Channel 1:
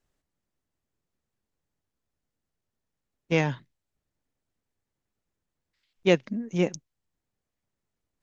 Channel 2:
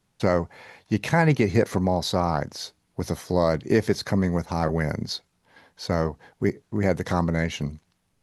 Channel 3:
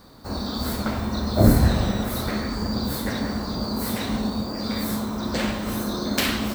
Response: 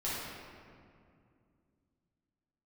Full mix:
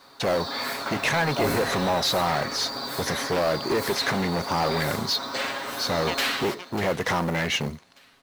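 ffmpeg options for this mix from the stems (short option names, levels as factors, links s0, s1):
-filter_complex "[0:a]acompressor=threshold=0.0562:ratio=2,acrusher=bits=2:mix=0:aa=0.5,volume=0.237[s0];[1:a]acompressor=threshold=0.0891:ratio=6,asoftclip=type=hard:threshold=0.0501,volume=1.19[s1];[2:a]lowshelf=f=330:g=-10,aecho=1:1:7.3:0.9,volume=0.282,asplit=2[s2][s3];[s3]volume=0.15,aecho=0:1:594|1188|1782|2376|2970|3564:1|0.4|0.16|0.064|0.0256|0.0102[s4];[s0][s1][s2][s4]amix=inputs=4:normalize=0,asplit=2[s5][s6];[s6]highpass=f=720:p=1,volume=7.94,asoftclip=type=tanh:threshold=0.251[s7];[s5][s7]amix=inputs=2:normalize=0,lowpass=f=3900:p=1,volume=0.501,acrusher=bits=6:mode=log:mix=0:aa=0.000001"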